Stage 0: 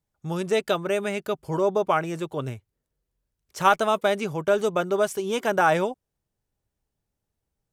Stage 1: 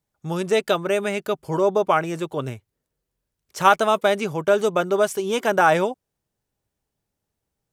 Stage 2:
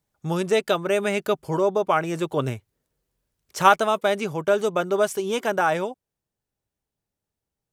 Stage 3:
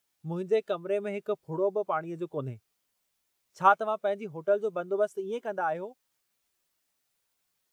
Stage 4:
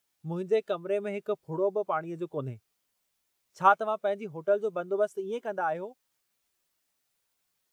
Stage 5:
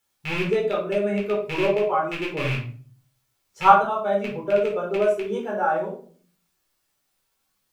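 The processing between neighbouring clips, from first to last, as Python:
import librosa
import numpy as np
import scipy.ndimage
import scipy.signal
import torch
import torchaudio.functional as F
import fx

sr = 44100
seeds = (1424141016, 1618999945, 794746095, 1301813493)

y1 = fx.low_shelf(x, sr, hz=77.0, db=-9.0)
y1 = y1 * librosa.db_to_amplitude(3.5)
y2 = fx.rider(y1, sr, range_db=5, speed_s=0.5)
y2 = y2 * librosa.db_to_amplitude(-2.0)
y3 = fx.quant_dither(y2, sr, seeds[0], bits=8, dither='triangular')
y3 = fx.spectral_expand(y3, sr, expansion=1.5)
y3 = y3 * librosa.db_to_amplitude(-6.0)
y4 = y3
y5 = fx.rattle_buzz(y4, sr, strikes_db=-40.0, level_db=-21.0)
y5 = fx.room_shoebox(y5, sr, seeds[1], volume_m3=380.0, walls='furnished', distance_m=4.2)
y5 = y5 * librosa.db_to_amplitude(-1.0)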